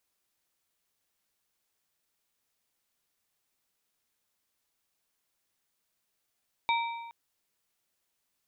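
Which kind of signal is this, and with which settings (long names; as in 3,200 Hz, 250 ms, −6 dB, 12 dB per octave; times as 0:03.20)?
struck metal plate, length 0.42 s, lowest mode 929 Hz, modes 3, decay 1.26 s, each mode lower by 4 dB, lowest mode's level −24 dB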